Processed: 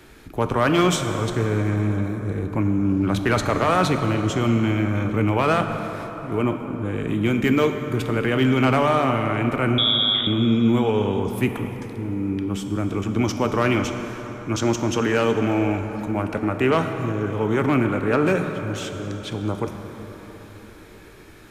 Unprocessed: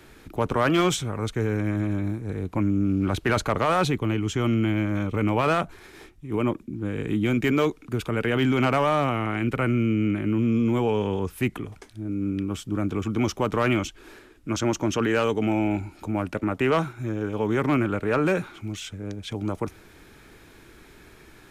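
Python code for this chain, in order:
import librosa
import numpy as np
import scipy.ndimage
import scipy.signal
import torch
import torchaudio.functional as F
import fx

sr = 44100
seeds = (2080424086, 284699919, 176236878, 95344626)

y = fx.freq_invert(x, sr, carrier_hz=3600, at=(9.78, 10.27))
y = fx.rev_plate(y, sr, seeds[0], rt60_s=4.7, hf_ratio=0.5, predelay_ms=0, drr_db=5.5)
y = y * 10.0 ** (2.0 / 20.0)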